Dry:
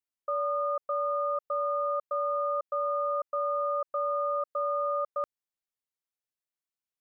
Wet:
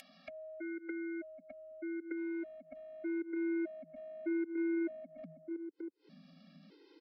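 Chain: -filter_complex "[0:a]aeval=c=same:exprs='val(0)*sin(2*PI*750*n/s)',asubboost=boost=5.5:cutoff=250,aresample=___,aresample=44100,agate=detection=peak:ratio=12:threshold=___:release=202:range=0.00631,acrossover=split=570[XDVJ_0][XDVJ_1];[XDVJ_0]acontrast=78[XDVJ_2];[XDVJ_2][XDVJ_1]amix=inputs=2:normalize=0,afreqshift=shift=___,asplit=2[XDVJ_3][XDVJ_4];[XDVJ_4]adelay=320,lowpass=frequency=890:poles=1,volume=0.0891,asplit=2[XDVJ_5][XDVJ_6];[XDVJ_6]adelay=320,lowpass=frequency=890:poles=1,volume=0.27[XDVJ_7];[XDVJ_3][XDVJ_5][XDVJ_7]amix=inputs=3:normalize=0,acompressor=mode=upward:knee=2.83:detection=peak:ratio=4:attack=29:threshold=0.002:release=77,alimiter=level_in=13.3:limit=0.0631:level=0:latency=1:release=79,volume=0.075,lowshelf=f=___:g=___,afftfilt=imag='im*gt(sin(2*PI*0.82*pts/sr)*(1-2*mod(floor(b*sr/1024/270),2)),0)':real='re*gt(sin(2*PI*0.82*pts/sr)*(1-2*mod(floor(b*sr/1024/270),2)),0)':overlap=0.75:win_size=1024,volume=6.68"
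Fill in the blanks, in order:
11025, 0.0794, 160, 440, 4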